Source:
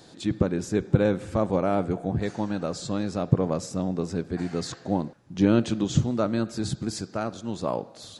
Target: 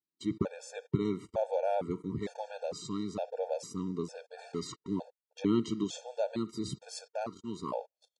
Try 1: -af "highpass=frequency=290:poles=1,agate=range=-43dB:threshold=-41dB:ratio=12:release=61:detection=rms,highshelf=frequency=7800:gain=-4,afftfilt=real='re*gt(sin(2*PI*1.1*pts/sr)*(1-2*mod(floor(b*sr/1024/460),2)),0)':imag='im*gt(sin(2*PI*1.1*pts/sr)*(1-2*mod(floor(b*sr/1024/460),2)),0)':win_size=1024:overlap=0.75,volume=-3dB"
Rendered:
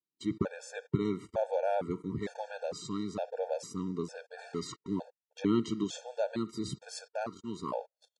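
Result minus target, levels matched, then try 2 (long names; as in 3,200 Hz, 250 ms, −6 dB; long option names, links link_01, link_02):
2,000 Hz band +4.0 dB
-af "highpass=frequency=290:poles=1,equalizer=frequency=1600:width_type=o:width=0.41:gain=-7.5,agate=range=-43dB:threshold=-41dB:ratio=12:release=61:detection=rms,highshelf=frequency=7800:gain=-4,afftfilt=real='re*gt(sin(2*PI*1.1*pts/sr)*(1-2*mod(floor(b*sr/1024/460),2)),0)':imag='im*gt(sin(2*PI*1.1*pts/sr)*(1-2*mod(floor(b*sr/1024/460),2)),0)':win_size=1024:overlap=0.75,volume=-3dB"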